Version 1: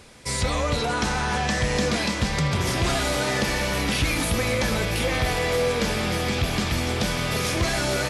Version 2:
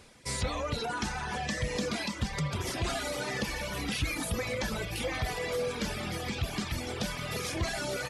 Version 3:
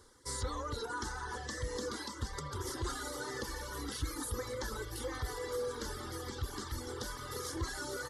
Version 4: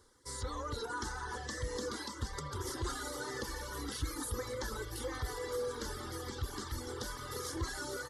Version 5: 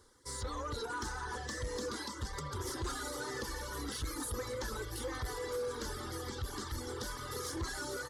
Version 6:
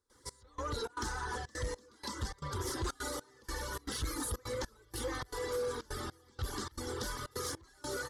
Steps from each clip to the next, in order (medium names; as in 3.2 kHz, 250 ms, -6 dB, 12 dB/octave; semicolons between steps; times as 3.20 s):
reverb removal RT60 1.7 s; trim -6.5 dB
static phaser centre 670 Hz, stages 6; trim -2.5 dB
level rider gain up to 4.5 dB; trim -4.5 dB
saturation -32 dBFS, distortion -17 dB; trim +1.5 dB
trance gate ".xx...xxx.xxxxx" 155 bpm -24 dB; trim +2 dB